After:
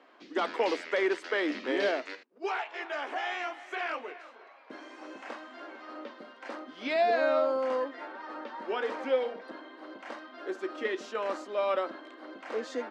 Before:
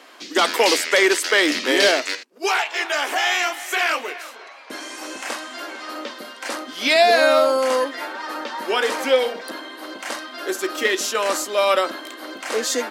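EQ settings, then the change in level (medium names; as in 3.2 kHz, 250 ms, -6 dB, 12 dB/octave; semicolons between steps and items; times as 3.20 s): low-pass 1.3 kHz 6 dB/octave; distance through air 78 m; -9.0 dB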